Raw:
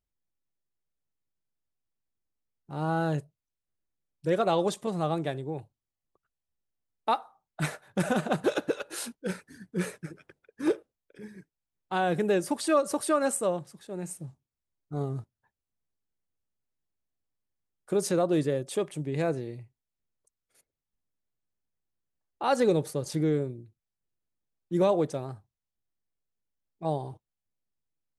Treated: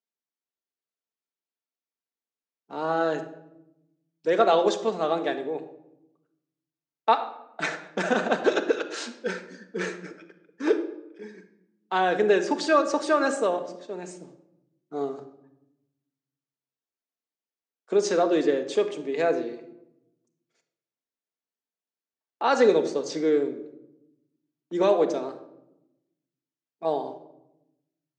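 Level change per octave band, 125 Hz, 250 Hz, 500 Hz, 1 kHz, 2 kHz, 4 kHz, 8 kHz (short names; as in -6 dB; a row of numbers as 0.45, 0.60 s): -11.0, +1.0, +5.0, +5.0, +7.0, +5.0, -2.5 dB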